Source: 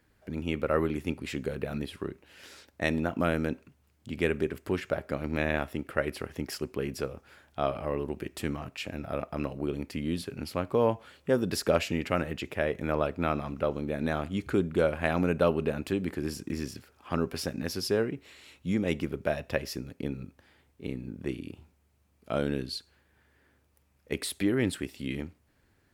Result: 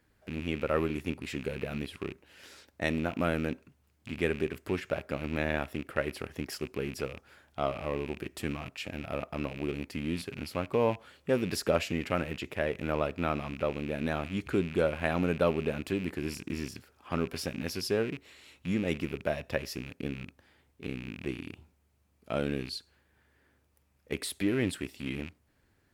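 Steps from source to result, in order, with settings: rattling part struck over -41 dBFS, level -30 dBFS; gain -2 dB

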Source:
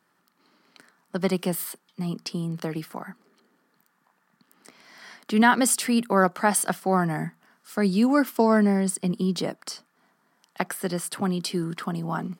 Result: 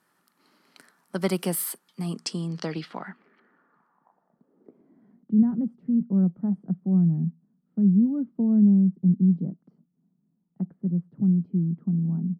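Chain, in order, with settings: low-pass sweep 12000 Hz -> 180 Hz, 1.93–5.33; gain -1 dB

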